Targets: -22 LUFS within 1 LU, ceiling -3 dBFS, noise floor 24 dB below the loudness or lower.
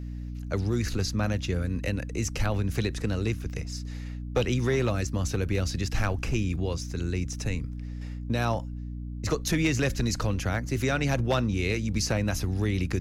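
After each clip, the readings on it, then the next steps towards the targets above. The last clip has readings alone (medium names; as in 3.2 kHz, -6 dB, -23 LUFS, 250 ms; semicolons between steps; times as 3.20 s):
clipped samples 0.3%; clipping level -17.5 dBFS; hum 60 Hz; highest harmonic 300 Hz; hum level -33 dBFS; loudness -29.0 LUFS; peak level -17.5 dBFS; loudness target -22.0 LUFS
-> clip repair -17.5 dBFS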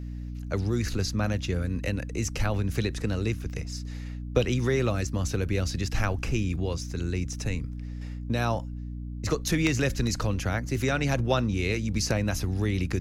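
clipped samples 0.0%; hum 60 Hz; highest harmonic 300 Hz; hum level -33 dBFS
-> hum notches 60/120/180/240/300 Hz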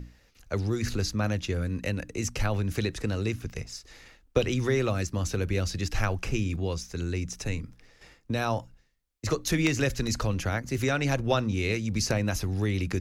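hum not found; loudness -29.5 LUFS; peak level -9.0 dBFS; loudness target -22.0 LUFS
-> trim +7.5 dB; peak limiter -3 dBFS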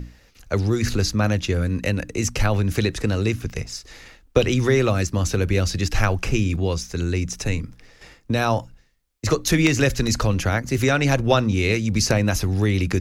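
loudness -22.0 LUFS; peak level -3.0 dBFS; noise floor -55 dBFS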